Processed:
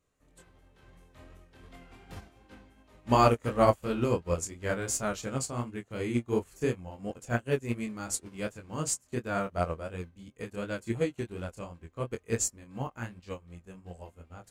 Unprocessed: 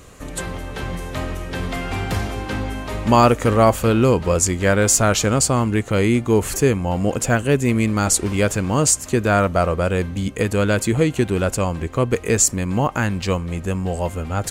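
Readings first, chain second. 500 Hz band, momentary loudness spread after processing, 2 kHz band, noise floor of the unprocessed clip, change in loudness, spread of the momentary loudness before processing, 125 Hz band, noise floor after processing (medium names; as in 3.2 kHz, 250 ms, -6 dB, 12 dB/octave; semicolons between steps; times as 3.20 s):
-12.5 dB, 22 LU, -15.0 dB, -35 dBFS, -12.5 dB, 12 LU, -15.5 dB, -66 dBFS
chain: chorus 2.8 Hz, depth 3.6 ms; upward expansion 2.5:1, over -31 dBFS; trim -4 dB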